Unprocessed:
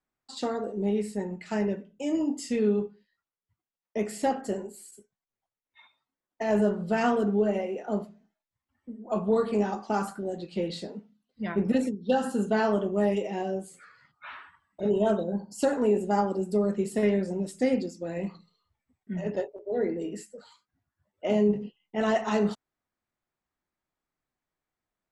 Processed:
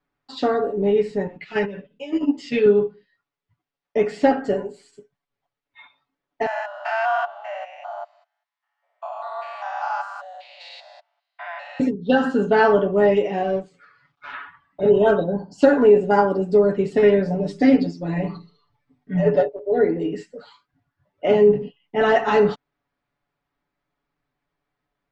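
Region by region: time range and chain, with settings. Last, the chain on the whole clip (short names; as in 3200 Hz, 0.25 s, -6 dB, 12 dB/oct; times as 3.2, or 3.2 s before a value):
1.27–2.66 bell 3000 Hz +11 dB 1.7 oct + level quantiser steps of 13 dB + ensemble effect
6.46–11.8 stepped spectrum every 0.2 s + steep high-pass 630 Hz 96 dB/oct
13.43–14.33 G.711 law mismatch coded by A + LPF 9400 Hz + notch 1900 Hz, Q 22
17.25–19.49 notches 50/100/150/200/250/300/350/400 Hz + comb 6.8 ms, depth 81%
whole clip: Bessel low-pass 3400 Hz, order 4; comb 7 ms, depth 68%; dynamic EQ 1500 Hz, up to +5 dB, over -49 dBFS, Q 4.4; gain +8 dB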